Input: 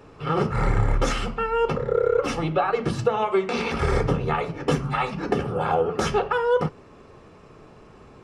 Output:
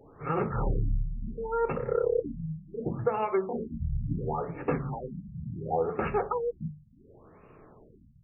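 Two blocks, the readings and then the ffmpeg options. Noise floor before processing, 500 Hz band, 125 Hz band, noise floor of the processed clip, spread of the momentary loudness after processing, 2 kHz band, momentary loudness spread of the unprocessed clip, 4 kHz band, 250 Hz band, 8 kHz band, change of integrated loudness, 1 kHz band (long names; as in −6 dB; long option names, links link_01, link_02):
−49 dBFS, −7.0 dB, −6.5 dB, −57 dBFS, 9 LU, −13.5 dB, 4 LU, below −25 dB, −7.0 dB, below −40 dB, −7.5 dB, −8.5 dB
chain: -af "bandreject=frequency=50:width_type=h:width=6,bandreject=frequency=100:width_type=h:width=6,bandreject=frequency=150:width_type=h:width=6,bandreject=frequency=200:width_type=h:width=6,afftfilt=real='re*lt(b*sr/1024,200*pow(2900/200,0.5+0.5*sin(2*PI*0.7*pts/sr)))':imag='im*lt(b*sr/1024,200*pow(2900/200,0.5+0.5*sin(2*PI*0.7*pts/sr)))':win_size=1024:overlap=0.75,volume=-5.5dB"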